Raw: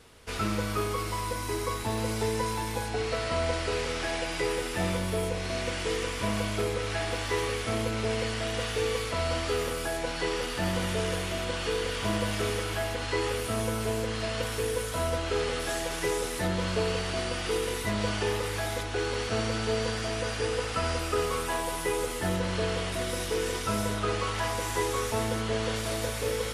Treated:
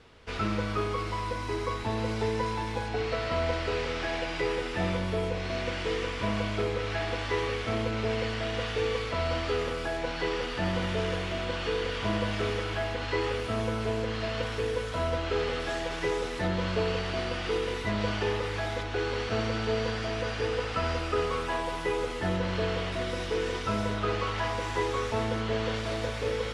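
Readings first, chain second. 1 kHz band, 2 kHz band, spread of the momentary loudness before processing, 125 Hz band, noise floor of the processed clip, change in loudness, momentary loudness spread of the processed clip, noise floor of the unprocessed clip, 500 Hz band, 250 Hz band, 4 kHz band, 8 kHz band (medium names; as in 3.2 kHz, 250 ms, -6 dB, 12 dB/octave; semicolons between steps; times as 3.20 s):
0.0 dB, 0.0 dB, 2 LU, 0.0 dB, -35 dBFS, -0.5 dB, 3 LU, -34 dBFS, 0.0 dB, 0.0 dB, -2.0 dB, -11.0 dB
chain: low-pass 4.2 kHz 12 dB/octave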